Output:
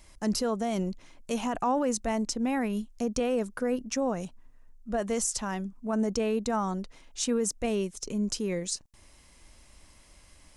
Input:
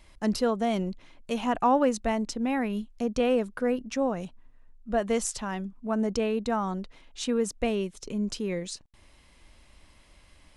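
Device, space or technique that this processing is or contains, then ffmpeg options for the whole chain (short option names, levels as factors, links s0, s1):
over-bright horn tweeter: -af "highshelf=f=4700:t=q:w=1.5:g=6,alimiter=limit=0.106:level=0:latency=1:release=13"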